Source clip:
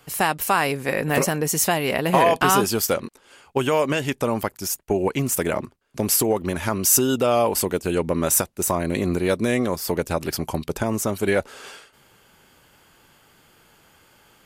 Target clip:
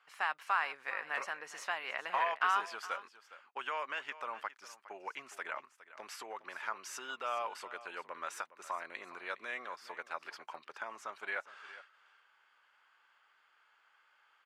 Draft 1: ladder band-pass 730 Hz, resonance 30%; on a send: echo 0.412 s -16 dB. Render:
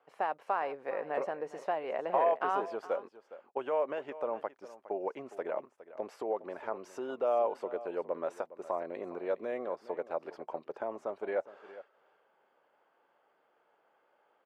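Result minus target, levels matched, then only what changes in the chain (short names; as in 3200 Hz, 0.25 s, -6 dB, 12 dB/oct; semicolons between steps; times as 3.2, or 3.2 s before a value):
2000 Hz band -11.5 dB
change: ladder band-pass 1600 Hz, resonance 30%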